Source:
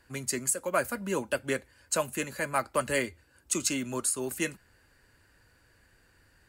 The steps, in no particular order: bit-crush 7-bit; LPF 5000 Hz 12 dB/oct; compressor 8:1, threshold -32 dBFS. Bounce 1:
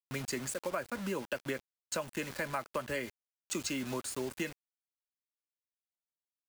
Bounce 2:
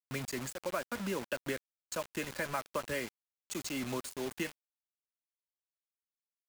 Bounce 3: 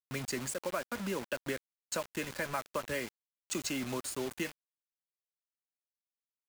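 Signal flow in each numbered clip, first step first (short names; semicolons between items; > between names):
LPF > bit-crush > compressor; compressor > LPF > bit-crush; LPF > compressor > bit-crush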